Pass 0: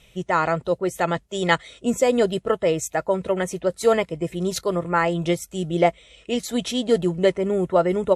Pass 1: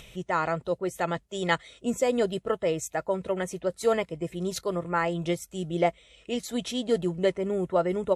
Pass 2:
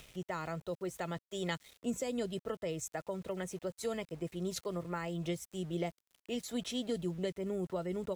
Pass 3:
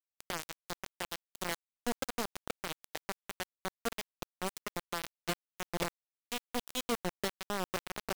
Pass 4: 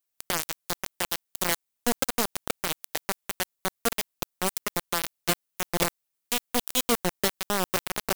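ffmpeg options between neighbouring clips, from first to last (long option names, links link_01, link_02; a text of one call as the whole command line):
ffmpeg -i in.wav -af "acompressor=mode=upward:threshold=-33dB:ratio=2.5,volume=-6dB" out.wav
ffmpeg -i in.wav -filter_complex "[0:a]aeval=exprs='val(0)*gte(abs(val(0)),0.00447)':channel_layout=same,acrossover=split=280|3000[link_01][link_02][link_03];[link_02]acompressor=threshold=-31dB:ratio=6[link_04];[link_01][link_04][link_03]amix=inputs=3:normalize=0,volume=-6dB" out.wav
ffmpeg -i in.wav -af "acrusher=bits=4:mix=0:aa=0.000001" out.wav
ffmpeg -i in.wav -af "crystalizer=i=1:c=0,volume=8dB" out.wav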